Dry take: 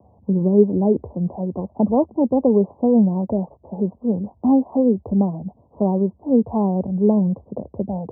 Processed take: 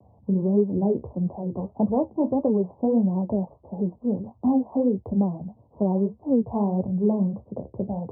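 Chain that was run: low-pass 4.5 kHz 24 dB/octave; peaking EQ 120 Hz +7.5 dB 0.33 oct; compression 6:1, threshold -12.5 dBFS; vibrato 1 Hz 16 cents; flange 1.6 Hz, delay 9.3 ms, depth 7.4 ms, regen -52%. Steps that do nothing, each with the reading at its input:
low-pass 4.5 kHz: input has nothing above 960 Hz

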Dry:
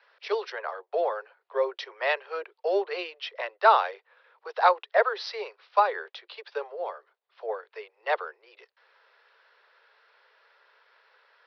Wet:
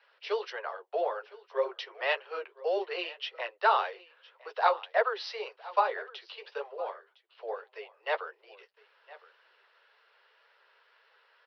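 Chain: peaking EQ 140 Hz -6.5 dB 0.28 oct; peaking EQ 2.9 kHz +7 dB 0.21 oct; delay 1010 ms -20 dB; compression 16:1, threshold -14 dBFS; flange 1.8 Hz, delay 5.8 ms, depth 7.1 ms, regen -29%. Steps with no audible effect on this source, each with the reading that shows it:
peaking EQ 140 Hz: input has nothing below 340 Hz

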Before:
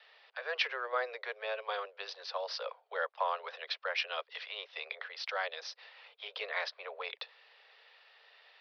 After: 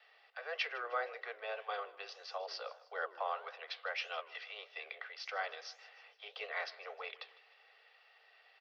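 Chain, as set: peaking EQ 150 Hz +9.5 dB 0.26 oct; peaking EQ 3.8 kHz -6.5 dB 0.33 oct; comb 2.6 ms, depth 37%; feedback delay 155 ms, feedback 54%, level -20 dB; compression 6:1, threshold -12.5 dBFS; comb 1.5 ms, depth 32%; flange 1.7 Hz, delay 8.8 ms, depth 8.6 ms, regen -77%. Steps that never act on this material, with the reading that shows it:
peaking EQ 150 Hz: input has nothing below 360 Hz; compression, threshold -12.5 dBFS: peak at its input -18.5 dBFS

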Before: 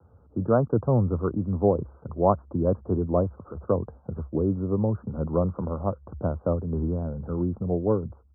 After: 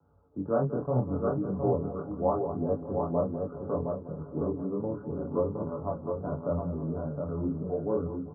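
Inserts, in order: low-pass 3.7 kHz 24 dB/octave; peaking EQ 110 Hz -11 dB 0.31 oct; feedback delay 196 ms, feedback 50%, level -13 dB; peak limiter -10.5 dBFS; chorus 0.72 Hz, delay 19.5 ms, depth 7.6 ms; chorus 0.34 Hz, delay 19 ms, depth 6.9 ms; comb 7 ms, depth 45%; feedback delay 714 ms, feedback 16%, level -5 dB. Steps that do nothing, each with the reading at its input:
low-pass 3.7 kHz: input has nothing above 1.2 kHz

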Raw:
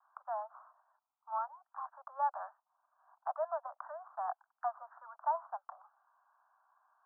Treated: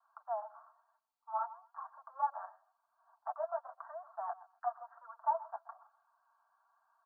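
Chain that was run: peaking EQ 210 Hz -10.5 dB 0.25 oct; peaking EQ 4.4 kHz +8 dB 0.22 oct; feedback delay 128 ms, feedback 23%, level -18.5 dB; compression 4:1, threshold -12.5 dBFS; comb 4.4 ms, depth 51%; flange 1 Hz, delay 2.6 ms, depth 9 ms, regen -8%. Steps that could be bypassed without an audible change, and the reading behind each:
peaking EQ 210 Hz: input has nothing below 540 Hz; peaking EQ 4.4 kHz: input has nothing above 1.7 kHz; compression, threshold -12.5 dBFS: peak at its input -23.0 dBFS

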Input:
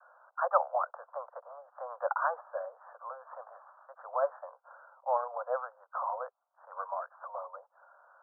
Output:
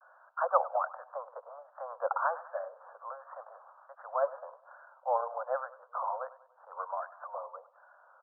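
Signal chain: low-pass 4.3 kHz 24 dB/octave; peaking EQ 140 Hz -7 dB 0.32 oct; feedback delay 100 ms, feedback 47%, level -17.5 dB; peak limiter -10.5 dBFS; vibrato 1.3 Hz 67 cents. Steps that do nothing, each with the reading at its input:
low-pass 4.3 kHz: input has nothing above 1.7 kHz; peaking EQ 140 Hz: input has nothing below 450 Hz; peak limiter -10.5 dBFS: peak at its input -13.0 dBFS

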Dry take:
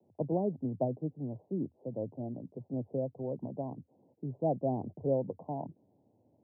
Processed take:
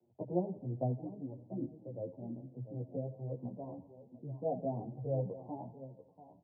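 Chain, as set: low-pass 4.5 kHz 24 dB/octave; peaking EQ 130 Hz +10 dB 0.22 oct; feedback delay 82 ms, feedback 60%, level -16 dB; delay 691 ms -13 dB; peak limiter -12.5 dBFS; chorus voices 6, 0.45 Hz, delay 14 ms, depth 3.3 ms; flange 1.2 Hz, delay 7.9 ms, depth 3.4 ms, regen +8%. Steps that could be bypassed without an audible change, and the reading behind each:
low-pass 4.5 kHz: input has nothing above 960 Hz; peak limiter -12.5 dBFS: peak at its input -17.0 dBFS

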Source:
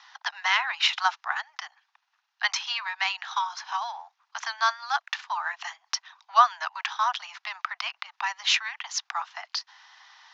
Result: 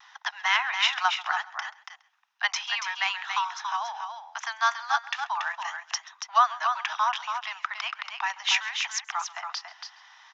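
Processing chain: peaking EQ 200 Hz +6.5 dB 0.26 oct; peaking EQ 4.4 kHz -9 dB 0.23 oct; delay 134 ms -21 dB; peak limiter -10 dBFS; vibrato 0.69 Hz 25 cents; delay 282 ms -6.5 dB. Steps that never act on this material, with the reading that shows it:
peaking EQ 200 Hz: input has nothing below 600 Hz

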